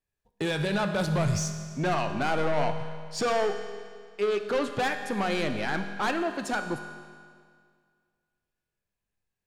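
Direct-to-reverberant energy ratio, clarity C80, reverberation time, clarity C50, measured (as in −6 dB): 6.0 dB, 9.0 dB, 2.0 s, 8.0 dB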